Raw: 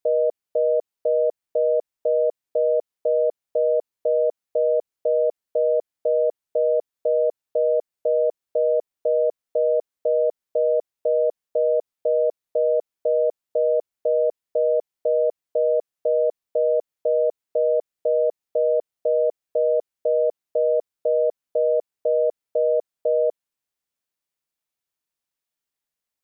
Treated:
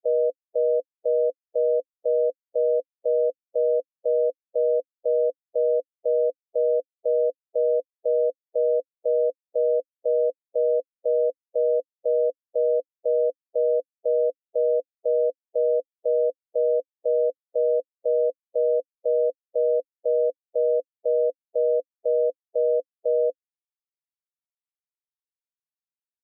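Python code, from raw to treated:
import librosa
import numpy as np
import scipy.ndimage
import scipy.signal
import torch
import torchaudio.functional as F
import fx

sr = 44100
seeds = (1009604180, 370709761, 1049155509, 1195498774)

y = fx.bin_expand(x, sr, power=3.0)
y = fx.double_bandpass(y, sr, hz=390.0, octaves=0.81)
y = y * 10.0 ** (5.0 / 20.0)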